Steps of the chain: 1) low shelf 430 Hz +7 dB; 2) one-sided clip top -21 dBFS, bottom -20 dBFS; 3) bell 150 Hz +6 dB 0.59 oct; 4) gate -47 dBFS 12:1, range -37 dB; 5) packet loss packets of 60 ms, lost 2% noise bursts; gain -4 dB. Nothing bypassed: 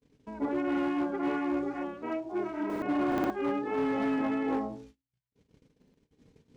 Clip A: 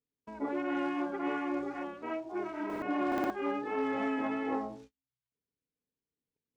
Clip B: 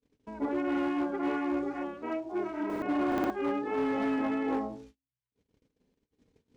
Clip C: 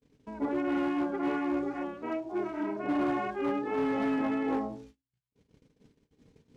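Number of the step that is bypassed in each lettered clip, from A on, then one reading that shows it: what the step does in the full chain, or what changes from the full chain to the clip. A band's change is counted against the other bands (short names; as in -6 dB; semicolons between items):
1, loudness change -3.0 LU; 3, 125 Hz band -3.0 dB; 5, crest factor change -5.0 dB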